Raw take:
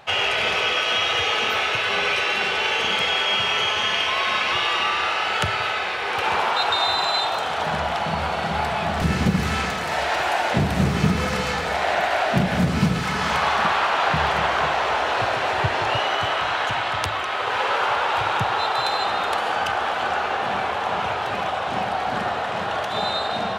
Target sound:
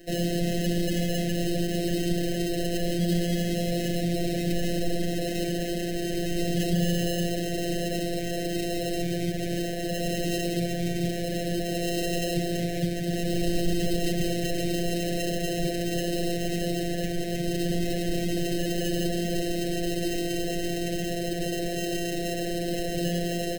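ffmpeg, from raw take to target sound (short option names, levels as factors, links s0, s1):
-filter_complex "[0:a]aecho=1:1:2.7:0.86,areverse,acompressor=mode=upward:threshold=0.0447:ratio=2.5,areverse,acrusher=samples=38:mix=1:aa=0.000001,acrossover=split=200|2000[s0][s1][s2];[s1]asoftclip=type=hard:threshold=0.0668[s3];[s0][s3][s2]amix=inputs=3:normalize=0,afftfilt=real='hypot(re,im)*cos(PI*b)':imag='0':win_size=1024:overlap=0.75,asoftclip=type=tanh:threshold=0.282,asuperstop=centerf=1100:order=20:qfactor=1.3"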